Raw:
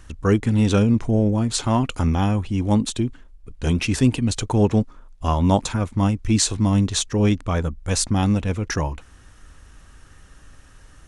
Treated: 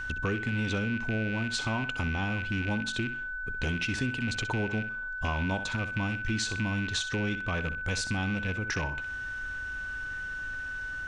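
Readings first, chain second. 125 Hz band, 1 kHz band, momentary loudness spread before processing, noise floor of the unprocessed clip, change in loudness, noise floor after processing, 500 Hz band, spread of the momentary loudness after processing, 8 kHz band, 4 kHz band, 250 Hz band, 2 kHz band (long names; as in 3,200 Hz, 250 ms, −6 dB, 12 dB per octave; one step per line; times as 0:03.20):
−12.0 dB, −10.5 dB, 7 LU, −49 dBFS, −10.5 dB, −37 dBFS, −12.5 dB, 6 LU, −13.5 dB, −6.5 dB, −13.0 dB, +7.0 dB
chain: loose part that buzzes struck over −23 dBFS, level −21 dBFS
low-pass filter 3,500 Hz 12 dB per octave
high-shelf EQ 2,300 Hz +11.5 dB
on a send: flutter between parallel walls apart 10.9 metres, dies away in 0.29 s
on the sum: downward compressor 4 to 1, threshold −31 dBFS, peak gain reduction 16.5 dB
steady tone 1,500 Hz −34 dBFS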